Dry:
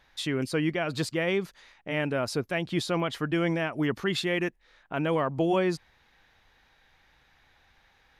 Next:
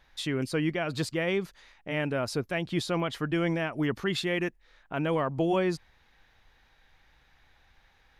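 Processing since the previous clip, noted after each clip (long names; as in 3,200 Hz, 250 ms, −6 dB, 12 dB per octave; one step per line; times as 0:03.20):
low-shelf EQ 62 Hz +8.5 dB
level −1.5 dB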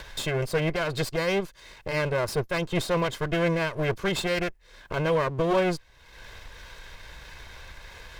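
lower of the sound and its delayed copy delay 1.9 ms
upward compression, threshold −32 dBFS
level +3.5 dB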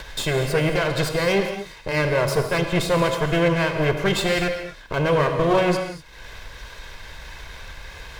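reverb whose tail is shaped and stops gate 270 ms flat, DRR 4.5 dB
level +4.5 dB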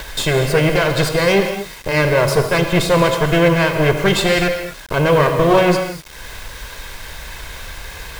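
bit reduction 7 bits
level +6 dB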